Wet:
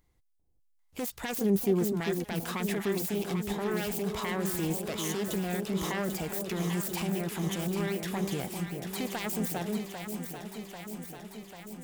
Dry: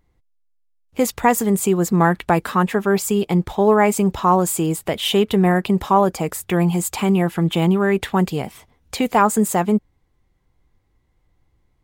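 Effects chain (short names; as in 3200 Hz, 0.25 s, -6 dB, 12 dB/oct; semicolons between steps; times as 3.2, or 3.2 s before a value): self-modulated delay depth 0.3 ms; high shelf 4100 Hz +11.5 dB; limiter -17 dBFS, peak gain reduction 17.5 dB; 1.41–1.83 thirty-one-band EQ 200 Hz +8 dB, 400 Hz +10 dB, 8000 Hz -8 dB; echo with dull and thin repeats by turns 0.396 s, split 800 Hz, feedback 82%, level -5.5 dB; gain -7.5 dB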